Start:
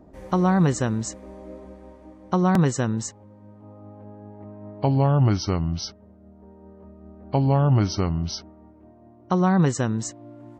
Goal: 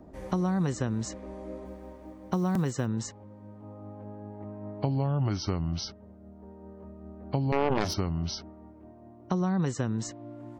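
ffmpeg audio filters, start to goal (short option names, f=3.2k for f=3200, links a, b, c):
-filter_complex "[0:a]acrossover=split=380|5700[a][b][c];[a]acompressor=threshold=-27dB:ratio=4[d];[b]acompressor=threshold=-35dB:ratio=4[e];[c]acompressor=threshold=-50dB:ratio=4[f];[d][e][f]amix=inputs=3:normalize=0,asettb=1/sr,asplit=3[g][h][i];[g]atrim=end=1.654[j];[h]atrim=start=1.65:end=2.86,asetpts=PTS-STARTPTS,afade=t=in:d=0.004:c=qsin,afade=t=out:st=1.206:d=0.004:c=qsin,acrusher=bits=9:mode=log:mix=0:aa=0.000001[k];[i]atrim=start=2.856[l];[j][k]acrossfade=d=0.004:c1=hsin:c2=qsin[m];[m][l]acrossfade=d=0.004:c1=qsin:c2=hsin,asettb=1/sr,asplit=3[n][o][p];[n]atrim=end=7.524[q];[o]atrim=start=7.52:end=7.94,asetpts=PTS-STARTPTS,afade=t=in:d=0.004:c=qsin,afade=t=out:st=0.416:d=0.004:c=qsin,aeval=exprs='0.168*(cos(1*acos(clip(val(0)/0.168,-1,1)))-cos(1*PI/2))+0.075*(cos(7*acos(clip(val(0)/0.168,-1,1)))-cos(7*PI/2))':c=same[r];[p]atrim=start=7.936[s];[q][r]acrossfade=d=0.004:c1=hsin:c2=qsin[t];[t][s]acrossfade=d=0.004:c1=qsin:c2=hsin"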